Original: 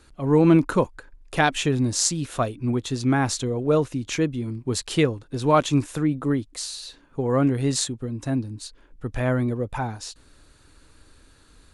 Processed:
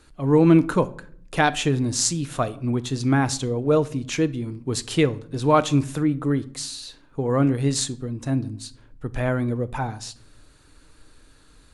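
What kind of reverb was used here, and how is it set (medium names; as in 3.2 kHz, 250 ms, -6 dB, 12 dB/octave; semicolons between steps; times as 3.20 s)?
simulated room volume 780 m³, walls furnished, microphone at 0.48 m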